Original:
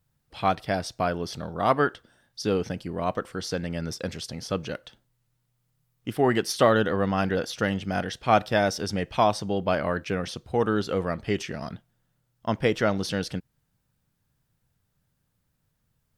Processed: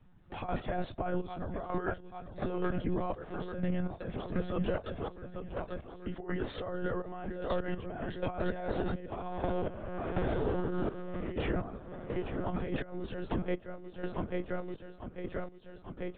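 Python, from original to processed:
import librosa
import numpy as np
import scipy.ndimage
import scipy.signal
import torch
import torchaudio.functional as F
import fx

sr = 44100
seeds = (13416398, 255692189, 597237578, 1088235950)

y = fx.spec_blur(x, sr, span_ms=356.0, at=(9.11, 11.31), fade=0.02)
y = fx.lowpass(y, sr, hz=1100.0, slope=6)
y = fx.doubler(y, sr, ms=18.0, db=-5.5)
y = fx.echo_feedback(y, sr, ms=844, feedback_pct=60, wet_db=-14)
y = fx.over_compress(y, sr, threshold_db=-32.0, ratio=-1.0)
y = fx.lpc_monotone(y, sr, seeds[0], pitch_hz=180.0, order=16)
y = fx.step_gate(y, sr, bpm=62, pattern='..xxx..x', floor_db=-12.0, edge_ms=4.5)
y = fx.band_squash(y, sr, depth_pct=70)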